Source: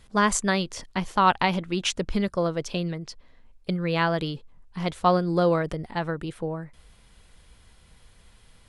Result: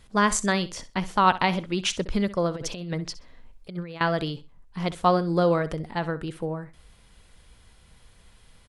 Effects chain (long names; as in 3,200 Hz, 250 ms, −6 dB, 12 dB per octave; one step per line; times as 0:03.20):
on a send: repeating echo 64 ms, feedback 21%, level −16 dB
0:02.54–0:04.01: on the sum: compressor whose output falls as the input rises −31 dBFS, ratio −0.5